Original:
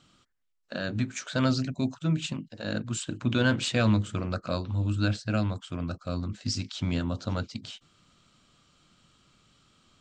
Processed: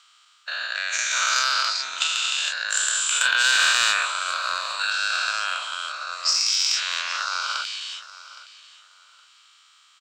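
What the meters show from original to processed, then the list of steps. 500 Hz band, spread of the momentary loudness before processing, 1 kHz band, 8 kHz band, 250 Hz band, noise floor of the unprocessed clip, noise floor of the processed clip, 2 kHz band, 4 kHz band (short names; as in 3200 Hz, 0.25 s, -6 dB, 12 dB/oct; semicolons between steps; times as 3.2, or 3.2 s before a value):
-10.0 dB, 10 LU, +12.0 dB, +17.5 dB, under -30 dB, -70 dBFS, -57 dBFS, +14.5 dB, +15.5 dB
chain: spectral dilation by 0.48 s; HPF 1100 Hz 24 dB/oct; in parallel at -6 dB: overloaded stage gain 19.5 dB; on the sum: transient shaper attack +7 dB, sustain +2 dB; feedback echo 0.816 s, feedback 23%, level -17 dB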